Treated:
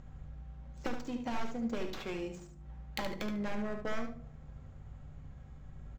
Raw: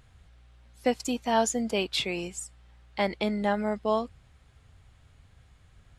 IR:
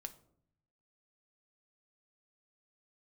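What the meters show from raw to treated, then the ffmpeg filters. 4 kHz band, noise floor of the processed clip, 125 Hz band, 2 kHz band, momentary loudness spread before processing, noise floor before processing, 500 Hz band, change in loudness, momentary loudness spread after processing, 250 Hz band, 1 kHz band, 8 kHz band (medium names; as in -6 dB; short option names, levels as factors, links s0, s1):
-14.0 dB, -52 dBFS, -3.0 dB, -8.5 dB, 13 LU, -59 dBFS, -12.0 dB, -11.0 dB, 15 LU, -7.0 dB, -12.5 dB, -20.0 dB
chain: -filter_complex "[0:a]lowpass=f=7200:t=q:w=3.9,highshelf=f=4900:g=10,asplit=2[s0][s1];[s1]alimiter=limit=0.299:level=0:latency=1:release=270,volume=1.19[s2];[s0][s2]amix=inputs=2:normalize=0,acrusher=bits=4:mode=log:mix=0:aa=0.000001,aeval=exprs='0.15*(abs(mod(val(0)/0.15+3,4)-2)-1)':c=same,acompressor=threshold=0.0224:ratio=16,aeval=exprs='val(0)+0.00224*(sin(2*PI*50*n/s)+sin(2*PI*2*50*n/s)/2+sin(2*PI*3*50*n/s)/3+sin(2*PI*4*50*n/s)/4+sin(2*PI*5*50*n/s)/5)':c=same,adynamicsmooth=sensitivity=4:basefreq=980,aexciter=amount=1.1:drive=4.8:freq=5600,aecho=1:1:73|146|219:0.422|0.0717|0.0122[s3];[1:a]atrim=start_sample=2205[s4];[s3][s4]afir=irnorm=-1:irlink=0,volume=1.58"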